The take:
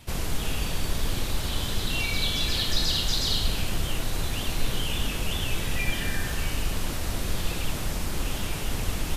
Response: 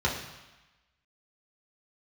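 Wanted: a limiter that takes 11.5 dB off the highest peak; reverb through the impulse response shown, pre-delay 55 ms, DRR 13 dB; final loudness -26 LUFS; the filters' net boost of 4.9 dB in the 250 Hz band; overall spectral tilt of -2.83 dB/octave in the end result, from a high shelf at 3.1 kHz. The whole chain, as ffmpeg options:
-filter_complex "[0:a]equalizer=f=250:t=o:g=6.5,highshelf=f=3100:g=8.5,alimiter=limit=0.106:level=0:latency=1,asplit=2[s0][s1];[1:a]atrim=start_sample=2205,adelay=55[s2];[s1][s2]afir=irnorm=-1:irlink=0,volume=0.0596[s3];[s0][s3]amix=inputs=2:normalize=0,volume=1.33"

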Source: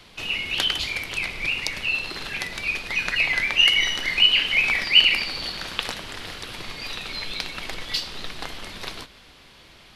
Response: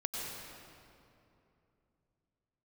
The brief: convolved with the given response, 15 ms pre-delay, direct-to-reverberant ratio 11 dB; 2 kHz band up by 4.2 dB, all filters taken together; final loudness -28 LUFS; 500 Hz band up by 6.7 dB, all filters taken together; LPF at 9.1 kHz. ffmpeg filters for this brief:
-filter_complex "[0:a]lowpass=9100,equalizer=f=500:t=o:g=8,equalizer=f=2000:t=o:g=5,asplit=2[s0][s1];[1:a]atrim=start_sample=2205,adelay=15[s2];[s1][s2]afir=irnorm=-1:irlink=0,volume=0.2[s3];[s0][s3]amix=inputs=2:normalize=0,volume=0.316"

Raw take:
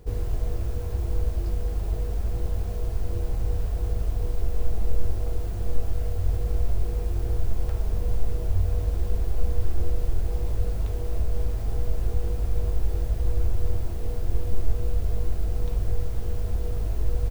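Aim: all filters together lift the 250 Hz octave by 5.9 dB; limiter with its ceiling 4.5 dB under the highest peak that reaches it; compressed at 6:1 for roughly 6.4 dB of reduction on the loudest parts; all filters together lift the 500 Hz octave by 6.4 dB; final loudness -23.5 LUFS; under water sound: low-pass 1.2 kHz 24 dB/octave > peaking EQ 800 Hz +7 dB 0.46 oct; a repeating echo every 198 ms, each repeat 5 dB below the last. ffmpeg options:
-af "equalizer=f=250:t=o:g=7,equalizer=f=500:t=o:g=4.5,acompressor=threshold=0.112:ratio=6,alimiter=limit=0.119:level=0:latency=1,lowpass=f=1200:w=0.5412,lowpass=f=1200:w=1.3066,equalizer=f=800:t=o:w=0.46:g=7,aecho=1:1:198|396|594|792|990|1188|1386:0.562|0.315|0.176|0.0988|0.0553|0.031|0.0173,volume=2.24"

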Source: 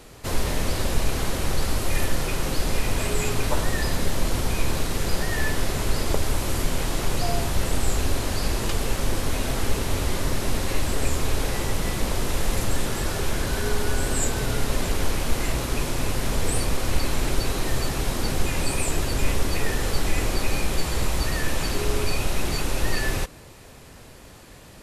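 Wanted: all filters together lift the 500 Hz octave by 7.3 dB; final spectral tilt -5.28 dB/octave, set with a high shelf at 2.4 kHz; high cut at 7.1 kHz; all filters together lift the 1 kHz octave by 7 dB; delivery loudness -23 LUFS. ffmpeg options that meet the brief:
-af "lowpass=7100,equalizer=f=500:t=o:g=7.5,equalizer=f=1000:t=o:g=7,highshelf=f=2400:g=-3.5,volume=1.19"

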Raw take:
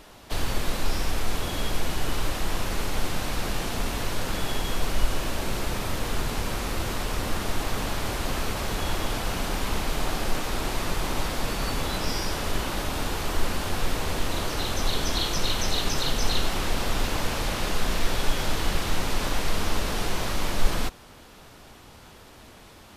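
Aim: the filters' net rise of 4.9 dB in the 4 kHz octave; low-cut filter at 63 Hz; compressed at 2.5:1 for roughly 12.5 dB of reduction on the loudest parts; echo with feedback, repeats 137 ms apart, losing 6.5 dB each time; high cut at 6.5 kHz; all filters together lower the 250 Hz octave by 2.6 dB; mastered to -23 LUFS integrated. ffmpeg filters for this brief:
-af "highpass=63,lowpass=6500,equalizer=f=250:t=o:g=-3.5,equalizer=f=4000:t=o:g=6.5,acompressor=threshold=0.01:ratio=2.5,aecho=1:1:137|274|411|548|685|822:0.473|0.222|0.105|0.0491|0.0231|0.0109,volume=4.73"

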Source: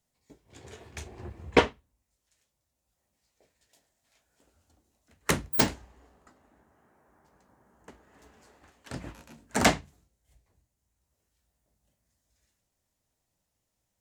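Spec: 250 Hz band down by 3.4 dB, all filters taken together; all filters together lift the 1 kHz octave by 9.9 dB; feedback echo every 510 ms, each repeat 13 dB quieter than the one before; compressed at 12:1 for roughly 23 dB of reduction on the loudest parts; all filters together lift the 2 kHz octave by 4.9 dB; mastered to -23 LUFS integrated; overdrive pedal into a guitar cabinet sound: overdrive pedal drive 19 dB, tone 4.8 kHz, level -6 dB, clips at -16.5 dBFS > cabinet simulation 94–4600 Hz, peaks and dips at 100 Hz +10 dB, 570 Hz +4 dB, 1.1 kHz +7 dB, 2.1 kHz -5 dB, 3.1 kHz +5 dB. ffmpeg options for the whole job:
-filter_complex "[0:a]equalizer=f=250:t=o:g=-5,equalizer=f=1000:t=o:g=7,equalizer=f=2000:t=o:g=5.5,acompressor=threshold=0.0158:ratio=12,aecho=1:1:510|1020|1530:0.224|0.0493|0.0108,asplit=2[s0][s1];[s1]highpass=f=720:p=1,volume=8.91,asoftclip=type=tanh:threshold=0.15[s2];[s0][s2]amix=inputs=2:normalize=0,lowpass=f=4800:p=1,volume=0.501,highpass=94,equalizer=f=100:t=q:w=4:g=10,equalizer=f=570:t=q:w=4:g=4,equalizer=f=1100:t=q:w=4:g=7,equalizer=f=2100:t=q:w=4:g=-5,equalizer=f=3100:t=q:w=4:g=5,lowpass=f=4600:w=0.5412,lowpass=f=4600:w=1.3066,volume=4.73"

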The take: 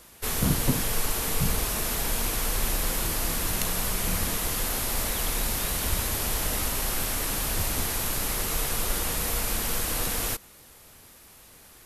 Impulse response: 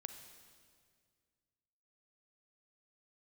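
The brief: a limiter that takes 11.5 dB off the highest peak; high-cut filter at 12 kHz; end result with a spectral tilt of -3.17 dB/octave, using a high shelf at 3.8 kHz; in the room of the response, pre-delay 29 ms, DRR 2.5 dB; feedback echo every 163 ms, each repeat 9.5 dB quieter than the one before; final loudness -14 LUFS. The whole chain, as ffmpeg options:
-filter_complex "[0:a]lowpass=12000,highshelf=f=3800:g=-4.5,alimiter=limit=0.0794:level=0:latency=1,aecho=1:1:163|326|489|652:0.335|0.111|0.0365|0.012,asplit=2[s0][s1];[1:a]atrim=start_sample=2205,adelay=29[s2];[s1][s2]afir=irnorm=-1:irlink=0,volume=1.19[s3];[s0][s3]amix=inputs=2:normalize=0,volume=6.31"

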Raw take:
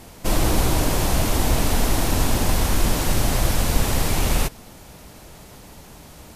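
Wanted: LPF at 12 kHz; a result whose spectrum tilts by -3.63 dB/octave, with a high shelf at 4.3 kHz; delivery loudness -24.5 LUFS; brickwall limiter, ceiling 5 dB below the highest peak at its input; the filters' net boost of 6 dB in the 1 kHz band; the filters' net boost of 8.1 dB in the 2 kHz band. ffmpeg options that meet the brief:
-af "lowpass=12000,equalizer=f=1000:t=o:g=5.5,equalizer=f=2000:t=o:g=7.5,highshelf=f=4300:g=5,volume=0.631,alimiter=limit=0.224:level=0:latency=1"

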